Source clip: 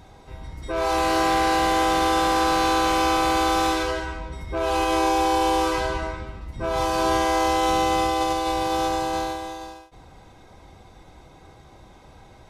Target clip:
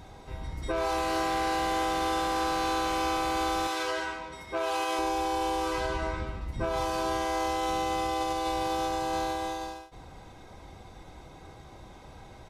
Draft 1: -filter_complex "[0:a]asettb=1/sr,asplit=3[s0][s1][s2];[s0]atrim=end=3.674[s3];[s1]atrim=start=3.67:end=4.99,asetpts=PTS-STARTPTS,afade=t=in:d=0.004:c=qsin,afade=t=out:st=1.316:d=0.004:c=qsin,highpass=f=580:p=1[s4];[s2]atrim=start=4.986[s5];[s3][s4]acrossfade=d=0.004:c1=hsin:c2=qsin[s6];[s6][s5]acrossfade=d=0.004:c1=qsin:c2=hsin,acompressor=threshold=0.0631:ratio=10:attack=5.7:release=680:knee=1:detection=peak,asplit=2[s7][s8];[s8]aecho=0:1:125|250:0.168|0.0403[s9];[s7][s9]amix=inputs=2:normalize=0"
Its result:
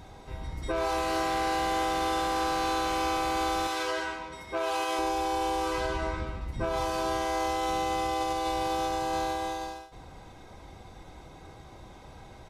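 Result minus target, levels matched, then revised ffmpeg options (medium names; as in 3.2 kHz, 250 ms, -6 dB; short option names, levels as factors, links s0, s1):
echo-to-direct +8 dB
-filter_complex "[0:a]asettb=1/sr,asplit=3[s0][s1][s2];[s0]atrim=end=3.674[s3];[s1]atrim=start=3.67:end=4.99,asetpts=PTS-STARTPTS,afade=t=in:d=0.004:c=qsin,afade=t=out:st=1.316:d=0.004:c=qsin,highpass=f=580:p=1[s4];[s2]atrim=start=4.986[s5];[s3][s4]acrossfade=d=0.004:c1=hsin:c2=qsin[s6];[s6][s5]acrossfade=d=0.004:c1=qsin:c2=hsin,acompressor=threshold=0.0631:ratio=10:attack=5.7:release=680:knee=1:detection=peak,asplit=2[s7][s8];[s8]aecho=0:1:125|250:0.0668|0.016[s9];[s7][s9]amix=inputs=2:normalize=0"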